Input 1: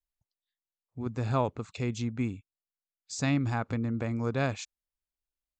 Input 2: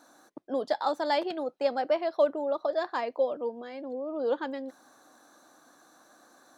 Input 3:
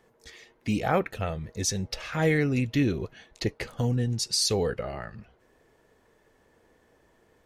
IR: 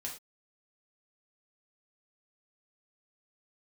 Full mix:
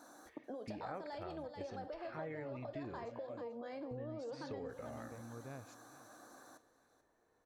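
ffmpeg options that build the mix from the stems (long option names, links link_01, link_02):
-filter_complex "[0:a]adelay=1100,volume=-19.5dB,asplit=2[link_01][link_02];[link_02]volume=-21dB[link_03];[1:a]acompressor=threshold=-34dB:ratio=5,volume=-0.5dB,asplit=3[link_04][link_05][link_06];[link_05]volume=-12.5dB[link_07];[link_06]volume=-16.5dB[link_08];[2:a]lowpass=1400,lowshelf=frequency=390:gain=-10,volume=-10.5dB,asplit=3[link_09][link_10][link_11];[link_09]atrim=end=3.27,asetpts=PTS-STARTPTS,afade=type=out:start_time=3.266:duration=0.004:curve=hsin[link_12];[link_10]atrim=start=3.27:end=3.91,asetpts=PTS-STARTPTS,volume=0[link_13];[link_11]atrim=start=3.91,asetpts=PTS-STARTPTS,afade=type=in:duration=0.004:curve=hsin[link_14];[link_12][link_13][link_14]concat=n=3:v=0:a=1,asplit=2[link_15][link_16];[link_16]volume=-9.5dB[link_17];[link_01][link_04]amix=inputs=2:normalize=0,equalizer=frequency=3000:width=1.3:gain=-8.5,alimiter=level_in=13dB:limit=-24dB:level=0:latency=1:release=300,volume=-13dB,volume=0dB[link_18];[3:a]atrim=start_sample=2205[link_19];[link_07][link_17]amix=inputs=2:normalize=0[link_20];[link_20][link_19]afir=irnorm=-1:irlink=0[link_21];[link_03][link_08]amix=inputs=2:normalize=0,aecho=0:1:437|874|1311|1748|2185:1|0.36|0.13|0.0467|0.0168[link_22];[link_15][link_18][link_21][link_22]amix=inputs=4:normalize=0,acompressor=threshold=-42dB:ratio=4"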